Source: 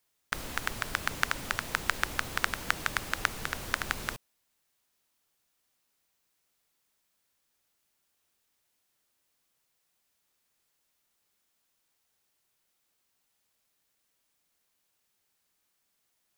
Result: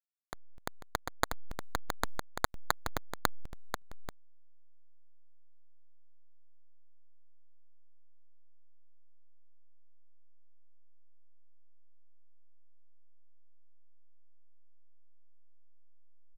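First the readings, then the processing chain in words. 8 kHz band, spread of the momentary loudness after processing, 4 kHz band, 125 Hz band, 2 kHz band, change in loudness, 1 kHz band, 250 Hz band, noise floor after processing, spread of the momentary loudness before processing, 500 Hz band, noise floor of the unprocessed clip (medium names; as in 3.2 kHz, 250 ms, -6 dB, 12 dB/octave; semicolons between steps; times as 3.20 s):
-6.5 dB, 16 LU, -7.5 dB, -4.0 dB, -10.5 dB, -6.0 dB, -3.0 dB, -3.0 dB, -49 dBFS, 6 LU, +0.5 dB, -77 dBFS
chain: expander on every frequency bin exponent 2; comb 4.9 ms, depth 59%; sample-and-hold 16×; hysteresis with a dead band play -19.5 dBFS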